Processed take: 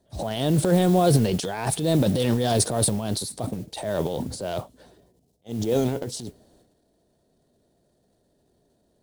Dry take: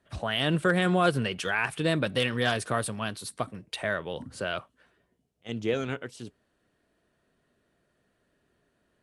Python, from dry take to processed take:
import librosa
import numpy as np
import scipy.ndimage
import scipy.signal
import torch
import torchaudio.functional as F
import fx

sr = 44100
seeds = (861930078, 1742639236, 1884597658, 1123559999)

y = fx.transient(x, sr, attack_db=-7, sustain_db=11)
y = fx.band_shelf(y, sr, hz=1800.0, db=-15.5, octaves=1.7)
y = fx.mod_noise(y, sr, seeds[0], snr_db=23)
y = F.gain(torch.from_numpy(y), 6.0).numpy()